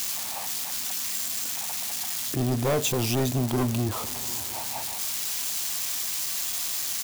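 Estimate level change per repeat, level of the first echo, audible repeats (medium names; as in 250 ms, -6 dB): -5.0 dB, -22.0 dB, 2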